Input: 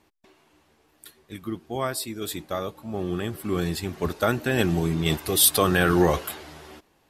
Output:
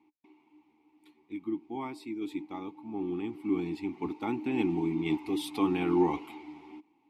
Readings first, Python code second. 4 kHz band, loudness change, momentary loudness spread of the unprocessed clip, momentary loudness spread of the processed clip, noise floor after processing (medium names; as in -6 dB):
-17.0 dB, -8.0 dB, 17 LU, 15 LU, -70 dBFS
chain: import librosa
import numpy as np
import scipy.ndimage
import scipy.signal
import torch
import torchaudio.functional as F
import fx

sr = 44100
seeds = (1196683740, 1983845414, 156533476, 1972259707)

y = fx.vowel_filter(x, sr, vowel='u')
y = F.gain(torch.from_numpy(y), 6.0).numpy()